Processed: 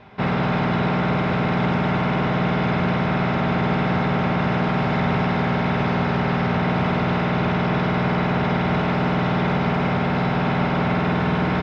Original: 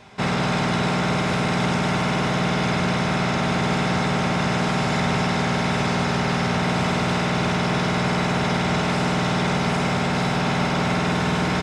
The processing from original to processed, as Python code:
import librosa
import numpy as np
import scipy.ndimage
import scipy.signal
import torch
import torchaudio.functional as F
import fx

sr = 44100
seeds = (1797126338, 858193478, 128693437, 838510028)

y = fx.air_absorb(x, sr, metres=320.0)
y = y * librosa.db_to_amplitude(2.0)